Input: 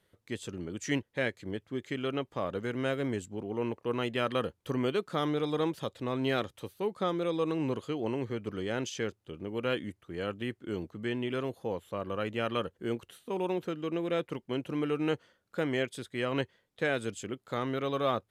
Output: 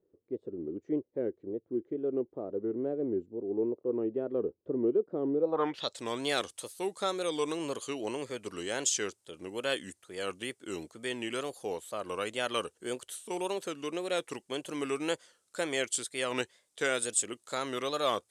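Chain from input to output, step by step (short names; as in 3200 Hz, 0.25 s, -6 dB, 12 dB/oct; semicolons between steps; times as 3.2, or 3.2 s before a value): tone controls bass -13 dB, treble +12 dB; wow and flutter 140 cents; low-pass sweep 380 Hz -> 8900 Hz, 5.39–5.99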